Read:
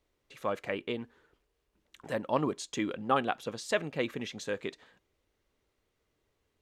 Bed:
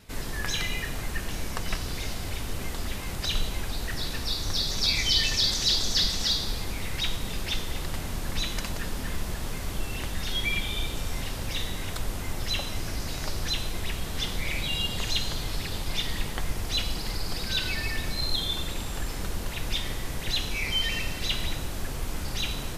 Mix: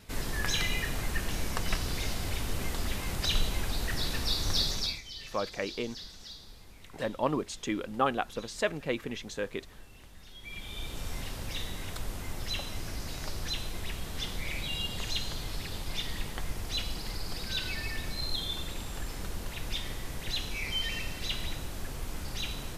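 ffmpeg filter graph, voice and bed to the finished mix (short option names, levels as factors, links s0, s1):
-filter_complex "[0:a]adelay=4900,volume=1[s0];[1:a]volume=5.31,afade=t=out:st=4.62:d=0.39:silence=0.1,afade=t=in:st=10.4:d=0.67:silence=0.177828[s1];[s0][s1]amix=inputs=2:normalize=0"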